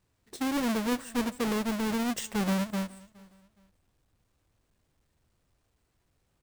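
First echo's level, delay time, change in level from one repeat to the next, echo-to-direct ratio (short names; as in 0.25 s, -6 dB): -23.0 dB, 0.417 s, -10.0 dB, -22.5 dB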